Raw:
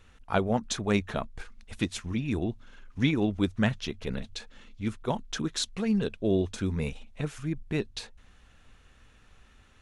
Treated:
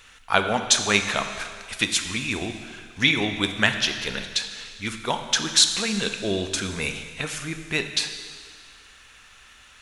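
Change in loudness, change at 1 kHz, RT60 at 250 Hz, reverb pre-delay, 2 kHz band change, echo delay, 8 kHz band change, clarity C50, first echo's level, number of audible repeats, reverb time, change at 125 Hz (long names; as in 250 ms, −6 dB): +7.0 dB, +8.0 dB, 1.8 s, 13 ms, +13.5 dB, no echo audible, +16.0 dB, 8.0 dB, no echo audible, no echo audible, 2.0 s, −2.5 dB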